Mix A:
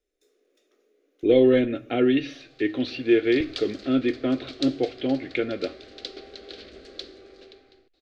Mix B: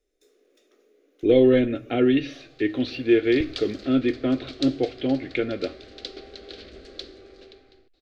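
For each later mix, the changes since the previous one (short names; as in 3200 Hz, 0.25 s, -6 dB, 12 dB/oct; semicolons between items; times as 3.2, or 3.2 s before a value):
first sound +4.5 dB; master: add low shelf 120 Hz +7.5 dB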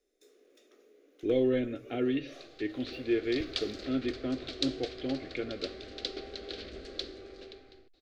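speech -10.5 dB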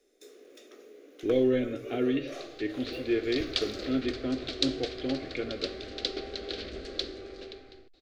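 speech: send +6.0 dB; first sound +10.0 dB; second sound +4.5 dB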